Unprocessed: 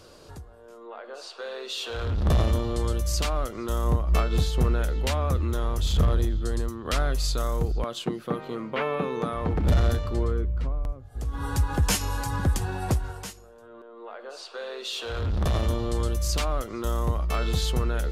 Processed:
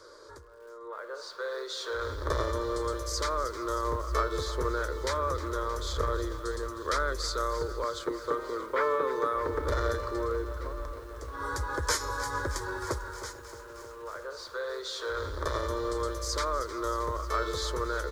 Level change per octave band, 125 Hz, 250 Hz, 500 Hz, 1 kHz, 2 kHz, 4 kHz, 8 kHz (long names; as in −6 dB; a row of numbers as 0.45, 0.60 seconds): −12.5, −7.5, 0.0, +2.0, +1.0, −4.0, −3.0 decibels